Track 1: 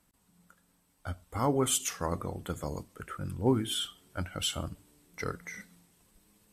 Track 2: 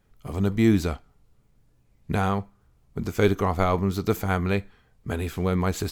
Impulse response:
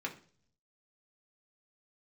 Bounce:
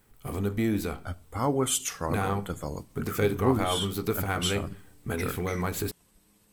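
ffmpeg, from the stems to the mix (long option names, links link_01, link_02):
-filter_complex "[0:a]volume=1.5dB[link_01];[1:a]aeval=exprs='if(lt(val(0),0),0.708*val(0),val(0))':channel_layout=same,acompressor=threshold=-33dB:ratio=2,aexciter=amount=3.3:drive=4.1:freq=8600,volume=0dB,asplit=2[link_02][link_03];[link_03]volume=-4dB[link_04];[2:a]atrim=start_sample=2205[link_05];[link_04][link_05]afir=irnorm=-1:irlink=0[link_06];[link_01][link_02][link_06]amix=inputs=3:normalize=0"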